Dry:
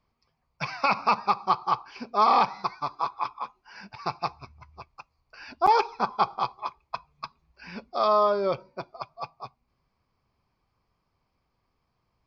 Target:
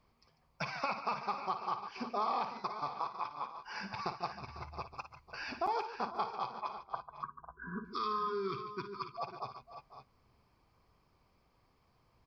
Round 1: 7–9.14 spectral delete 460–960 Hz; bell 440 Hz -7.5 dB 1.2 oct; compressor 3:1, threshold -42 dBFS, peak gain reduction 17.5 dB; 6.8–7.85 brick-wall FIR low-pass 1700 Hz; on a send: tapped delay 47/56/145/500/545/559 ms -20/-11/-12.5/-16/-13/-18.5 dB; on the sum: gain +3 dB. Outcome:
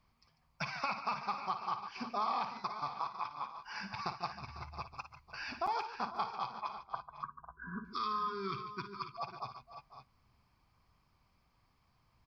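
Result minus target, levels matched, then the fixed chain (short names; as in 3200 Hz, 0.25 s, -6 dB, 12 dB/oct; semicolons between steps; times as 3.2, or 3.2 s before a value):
500 Hz band -4.5 dB
7–9.14 spectral delete 460–960 Hz; bell 440 Hz +2 dB 1.2 oct; compressor 3:1, threshold -42 dBFS, peak gain reduction 19.5 dB; 6.8–7.85 brick-wall FIR low-pass 1700 Hz; on a send: tapped delay 47/56/145/500/545/559 ms -20/-11/-12.5/-16/-13/-18.5 dB; on the sum: gain +3 dB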